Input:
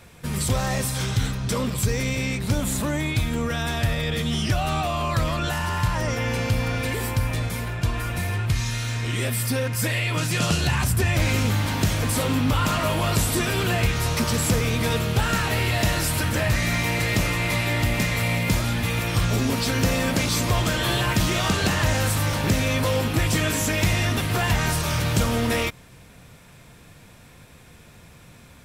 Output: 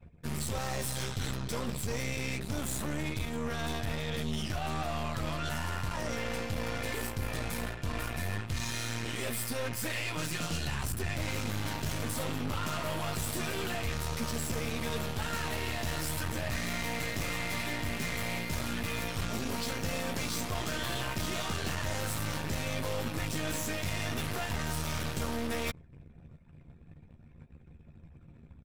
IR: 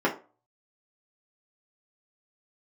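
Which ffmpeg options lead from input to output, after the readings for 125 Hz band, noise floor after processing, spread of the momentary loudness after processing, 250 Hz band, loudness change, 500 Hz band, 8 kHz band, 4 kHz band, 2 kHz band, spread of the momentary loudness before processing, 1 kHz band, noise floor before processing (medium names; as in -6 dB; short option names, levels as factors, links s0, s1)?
-13.5 dB, -55 dBFS, 2 LU, -11.0 dB, -11.0 dB, -10.0 dB, -10.0 dB, -10.0 dB, -10.5 dB, 4 LU, -10.0 dB, -48 dBFS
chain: -filter_complex "[0:a]anlmdn=0.0631,asplit=2[s0][s1];[s1]adelay=13,volume=0.501[s2];[s0][s2]amix=inputs=2:normalize=0,areverse,acompressor=threshold=0.0282:ratio=5,areverse,aeval=exprs='0.0794*(cos(1*acos(clip(val(0)/0.0794,-1,1)))-cos(1*PI/2))+0.0141*(cos(6*acos(clip(val(0)/0.0794,-1,1)))-cos(6*PI/2))':c=same,volume=0.75"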